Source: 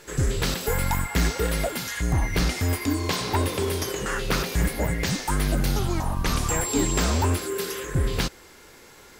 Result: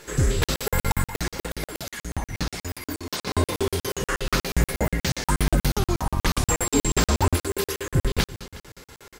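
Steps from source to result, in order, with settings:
0:01.03–0:03.27: harmonic and percussive parts rebalanced harmonic −12 dB
repeating echo 182 ms, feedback 54%, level −15 dB
regular buffer underruns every 0.12 s, samples 2,048, zero, from 0:00.44
level +2.5 dB

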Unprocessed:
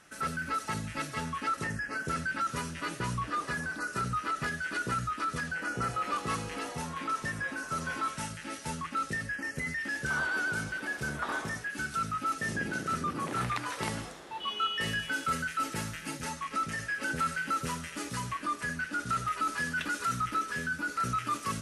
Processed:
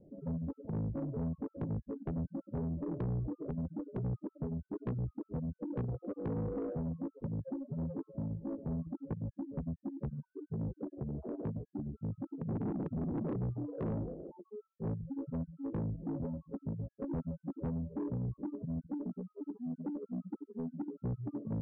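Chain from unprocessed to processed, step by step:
0:18.99–0:20.88: Butterworth high-pass 170 Hz 72 dB per octave
gate on every frequency bin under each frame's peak −15 dB strong
Butterworth low-pass 580 Hz 48 dB per octave
0:10.84–0:11.45: downward compressor 6 to 1, threshold −40 dBFS, peak gain reduction 6 dB
soft clipping −39 dBFS, distortion −10 dB
level +7.5 dB

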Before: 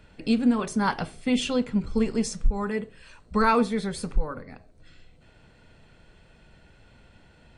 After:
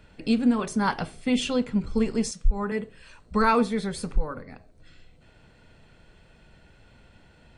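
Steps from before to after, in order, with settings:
0:02.31–0:02.72: multiband upward and downward expander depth 70%

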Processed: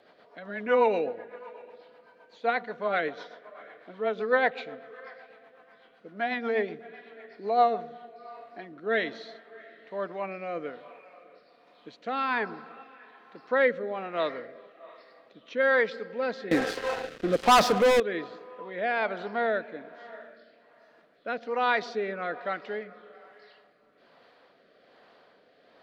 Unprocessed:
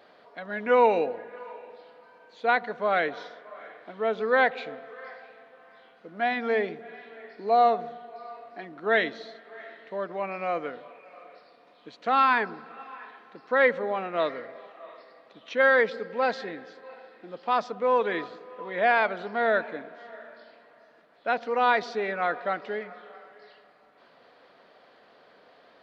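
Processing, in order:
0:16.51–0:18.00: leveller curve on the samples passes 5
rotating-speaker cabinet horn 8 Hz, later 1.2 Hz, at 0:07.39

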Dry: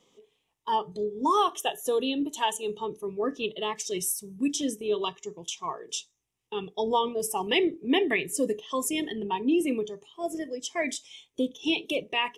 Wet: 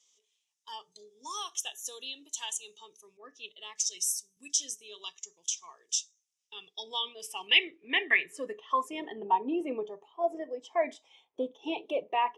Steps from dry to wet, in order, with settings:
band-pass filter sweep 6,100 Hz → 810 Hz, 0:06.36–0:09.24
0:03.17–0:04.37: multiband upward and downward expander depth 40%
level +6.5 dB

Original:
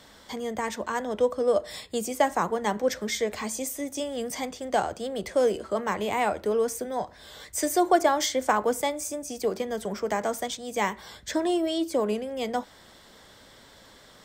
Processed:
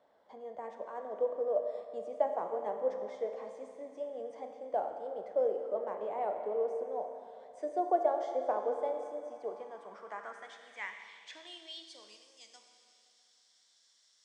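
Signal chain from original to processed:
four-comb reverb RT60 2.9 s, combs from 27 ms, DRR 4.5 dB
band-pass filter sweep 640 Hz → 5,900 Hz, 0:09.23–0:12.38
downsampling to 22,050 Hz
dynamic equaliser 430 Hz, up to +5 dB, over −37 dBFS, Q 1.4
level −8 dB

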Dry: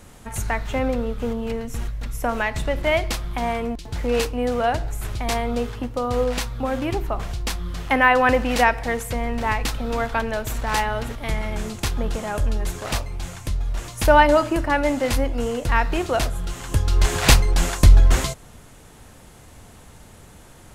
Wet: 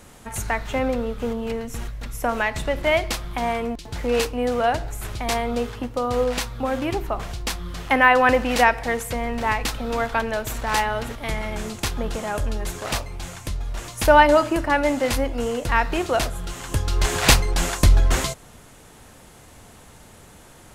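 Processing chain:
low-shelf EQ 160 Hz −5.5 dB
level +1 dB

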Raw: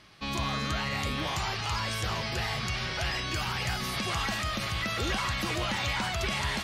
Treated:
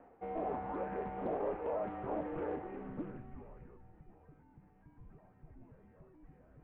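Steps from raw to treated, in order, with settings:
low-pass filter sweep 900 Hz → 230 Hz, 0:02.45–0:04.11
reversed playback
upward compression, threshold −33 dBFS
reversed playback
single-sideband voice off tune −360 Hz 440–2,900 Hz
highs frequency-modulated by the lows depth 0.33 ms
level −5.5 dB

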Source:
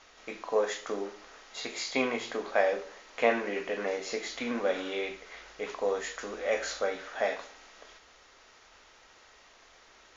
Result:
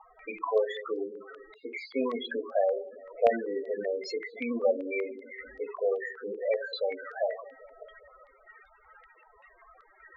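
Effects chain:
in parallel at −1.5 dB: downward compressor 4 to 1, threshold −44 dBFS, peak gain reduction 20.5 dB
on the sum: delay with a low-pass on its return 196 ms, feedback 67%, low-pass 420 Hz, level −14 dB
spectral peaks only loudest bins 8
low-pass on a step sequencer 5.2 Hz 950–5,000 Hz

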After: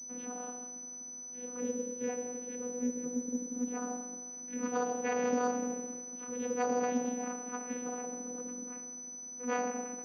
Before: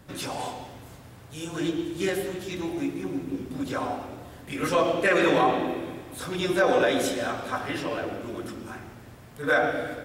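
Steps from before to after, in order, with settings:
channel vocoder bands 8, saw 246 Hz
switching amplifier with a slow clock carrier 6,000 Hz
level −8.5 dB

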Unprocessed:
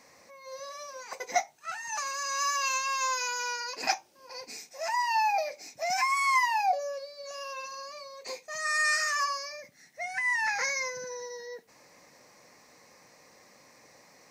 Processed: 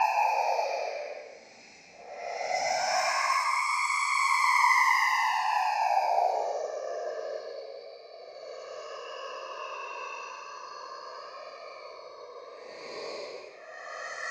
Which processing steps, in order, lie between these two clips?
random phases in short frames
extreme stretch with random phases 4.3×, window 0.25 s, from 0:05.27
low-pass that shuts in the quiet parts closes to 2,700 Hz, open at −21.5 dBFS

